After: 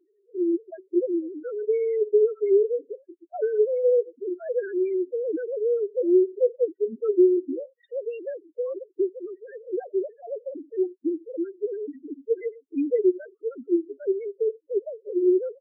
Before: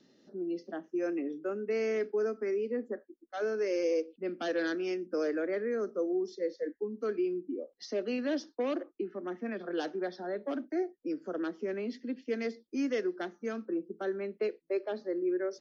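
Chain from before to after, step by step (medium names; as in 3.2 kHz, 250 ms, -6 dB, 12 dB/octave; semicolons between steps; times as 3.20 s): formants replaced by sine waves; loudest bins only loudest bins 4; trim +8.5 dB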